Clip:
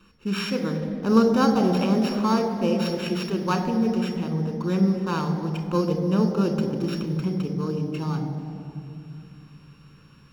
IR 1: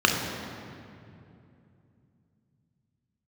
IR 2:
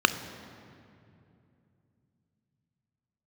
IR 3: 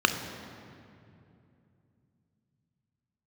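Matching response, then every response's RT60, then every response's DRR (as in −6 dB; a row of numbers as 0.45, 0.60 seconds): 3; 2.7, 2.6, 2.7 seconds; 0.5, 10.5, 6.5 decibels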